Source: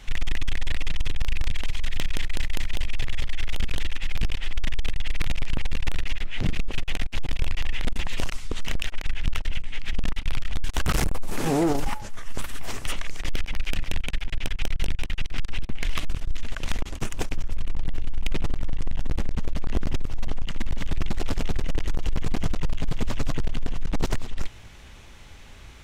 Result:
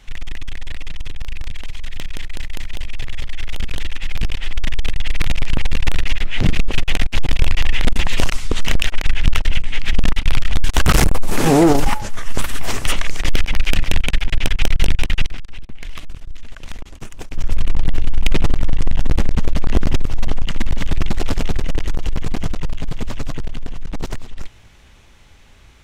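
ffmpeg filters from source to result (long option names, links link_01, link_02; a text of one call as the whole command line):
ffmpeg -i in.wav -filter_complex "[0:a]asplit=3[link_01][link_02][link_03];[link_01]atrim=end=15.38,asetpts=PTS-STARTPTS,afade=type=out:start_time=15.23:duration=0.15:silence=0.177828[link_04];[link_02]atrim=start=15.38:end=17.31,asetpts=PTS-STARTPTS,volume=-15dB[link_05];[link_03]atrim=start=17.31,asetpts=PTS-STARTPTS,afade=type=in:duration=0.15:silence=0.177828[link_06];[link_04][link_05][link_06]concat=n=3:v=0:a=1,dynaudnorm=framelen=310:gausssize=31:maxgain=14dB,volume=-2dB" out.wav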